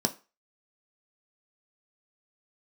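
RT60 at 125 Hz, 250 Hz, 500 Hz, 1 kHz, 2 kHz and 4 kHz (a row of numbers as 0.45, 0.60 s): 0.20, 0.30, 0.30, 0.35, 0.30, 0.30 s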